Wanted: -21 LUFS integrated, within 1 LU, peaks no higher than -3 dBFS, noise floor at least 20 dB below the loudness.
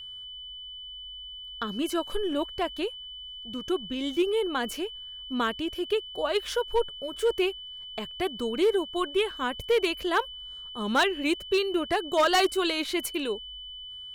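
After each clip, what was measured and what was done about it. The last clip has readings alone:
clipped samples 0.4%; clipping level -17.0 dBFS; steady tone 3 kHz; tone level -39 dBFS; loudness -28.0 LUFS; peak level -17.0 dBFS; loudness target -21.0 LUFS
-> clip repair -17 dBFS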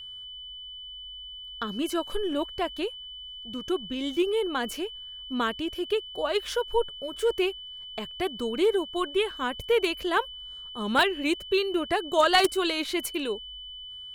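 clipped samples 0.0%; steady tone 3 kHz; tone level -39 dBFS
-> band-stop 3 kHz, Q 30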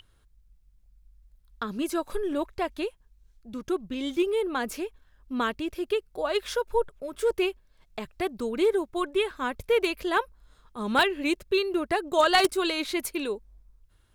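steady tone not found; loudness -28.0 LUFS; peak level -8.0 dBFS; loudness target -21.0 LUFS
-> trim +7 dB; peak limiter -3 dBFS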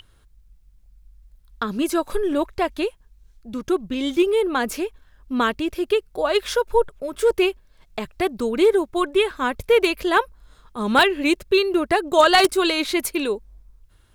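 loudness -21.0 LUFS; peak level -3.0 dBFS; noise floor -56 dBFS

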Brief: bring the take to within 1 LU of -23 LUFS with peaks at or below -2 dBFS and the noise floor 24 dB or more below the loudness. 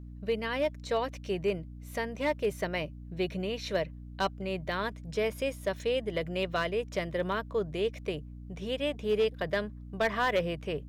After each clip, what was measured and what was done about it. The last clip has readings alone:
clipped samples 0.4%; clipping level -21.0 dBFS; hum 60 Hz; highest harmonic 300 Hz; hum level -42 dBFS; loudness -32.5 LUFS; peak level -21.0 dBFS; loudness target -23.0 LUFS
-> clip repair -21 dBFS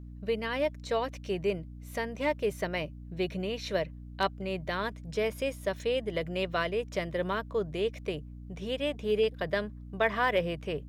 clipped samples 0.0%; hum 60 Hz; highest harmonic 300 Hz; hum level -42 dBFS
-> hum notches 60/120/180/240/300 Hz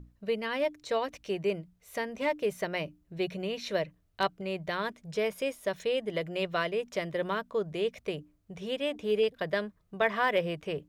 hum not found; loudness -32.5 LUFS; peak level -13.0 dBFS; loudness target -23.0 LUFS
-> trim +9.5 dB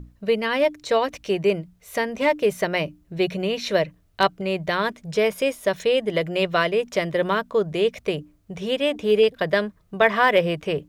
loudness -23.0 LUFS; peak level -3.5 dBFS; noise floor -60 dBFS

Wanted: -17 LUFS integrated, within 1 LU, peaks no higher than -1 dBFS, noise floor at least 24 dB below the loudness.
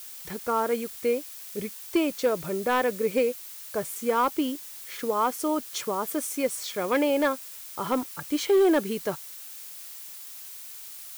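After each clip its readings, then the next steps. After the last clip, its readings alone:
clipped samples 0.5%; clipping level -16.0 dBFS; noise floor -42 dBFS; noise floor target -52 dBFS; loudness -27.5 LUFS; peak level -16.0 dBFS; loudness target -17.0 LUFS
-> clip repair -16 dBFS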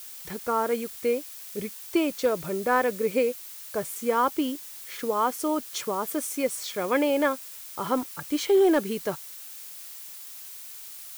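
clipped samples 0.0%; noise floor -42 dBFS; noise floor target -51 dBFS
-> noise reduction 9 dB, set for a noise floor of -42 dBFS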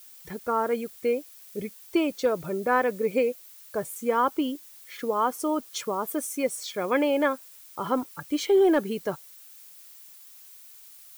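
noise floor -49 dBFS; noise floor target -51 dBFS
-> noise reduction 6 dB, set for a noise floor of -49 dBFS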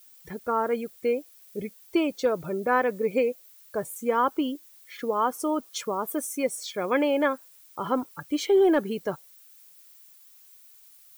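noise floor -54 dBFS; loudness -27.0 LUFS; peak level -10.0 dBFS; loudness target -17.0 LUFS
-> trim +10 dB; peak limiter -1 dBFS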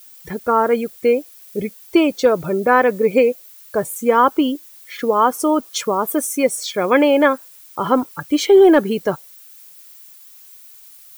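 loudness -17.0 LUFS; peak level -1.0 dBFS; noise floor -44 dBFS

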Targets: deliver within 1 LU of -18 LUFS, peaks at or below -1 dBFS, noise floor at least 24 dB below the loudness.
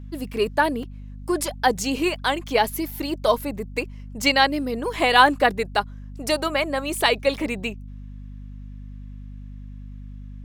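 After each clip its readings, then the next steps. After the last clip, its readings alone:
dropouts 3; longest dropout 3.4 ms; hum 50 Hz; highest harmonic 250 Hz; hum level -35 dBFS; loudness -22.5 LUFS; peak level -2.5 dBFS; loudness target -18.0 LUFS
-> interpolate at 0.83/2.91/4.93 s, 3.4 ms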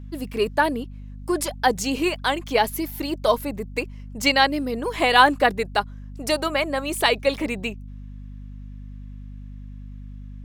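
dropouts 0; hum 50 Hz; highest harmonic 250 Hz; hum level -35 dBFS
-> hum notches 50/100/150/200/250 Hz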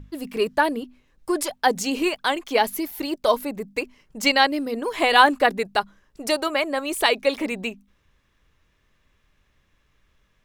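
hum not found; loudness -22.5 LUFS; peak level -2.5 dBFS; loudness target -18.0 LUFS
-> trim +4.5 dB; peak limiter -1 dBFS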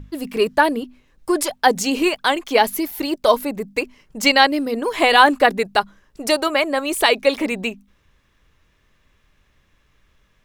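loudness -18.5 LUFS; peak level -1.0 dBFS; noise floor -62 dBFS

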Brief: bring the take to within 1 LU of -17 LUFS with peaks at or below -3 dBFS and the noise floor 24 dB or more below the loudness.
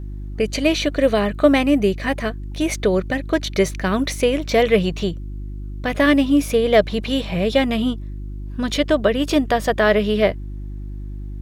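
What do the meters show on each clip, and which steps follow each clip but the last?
hum 50 Hz; highest harmonic 350 Hz; hum level -27 dBFS; loudness -19.0 LUFS; peak level -3.0 dBFS; loudness target -17.0 LUFS
-> de-hum 50 Hz, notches 7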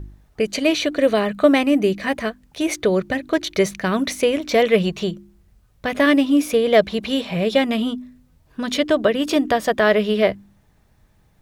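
hum not found; loudness -19.5 LUFS; peak level -3.5 dBFS; loudness target -17.0 LUFS
-> trim +2.5 dB; peak limiter -3 dBFS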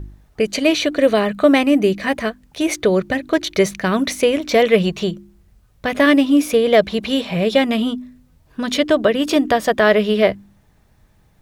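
loudness -17.0 LUFS; peak level -3.0 dBFS; noise floor -56 dBFS

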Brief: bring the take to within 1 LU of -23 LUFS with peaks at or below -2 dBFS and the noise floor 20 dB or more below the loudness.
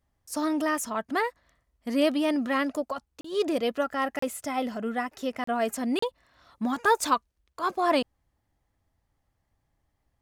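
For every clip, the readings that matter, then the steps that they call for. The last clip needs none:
dropouts 4; longest dropout 34 ms; loudness -28.5 LUFS; peak level -10.5 dBFS; loudness target -23.0 LUFS
-> interpolate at 3.21/4.19/5.44/5.99 s, 34 ms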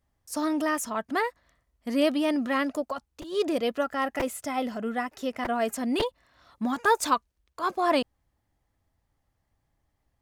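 dropouts 0; loudness -28.0 LUFS; peak level -10.5 dBFS; loudness target -23.0 LUFS
-> trim +5 dB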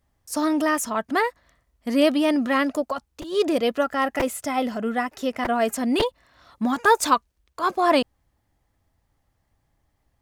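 loudness -23.0 LUFS; peak level -5.5 dBFS; noise floor -72 dBFS

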